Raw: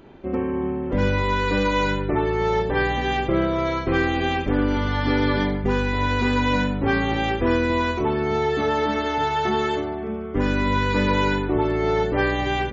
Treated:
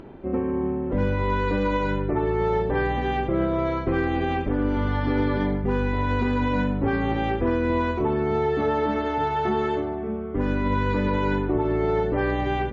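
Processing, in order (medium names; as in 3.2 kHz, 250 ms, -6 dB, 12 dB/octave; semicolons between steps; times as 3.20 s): upward compressor, threshold -36 dBFS; low-pass 1.2 kHz 6 dB/octave; peak limiter -14.5 dBFS, peak gain reduction 4 dB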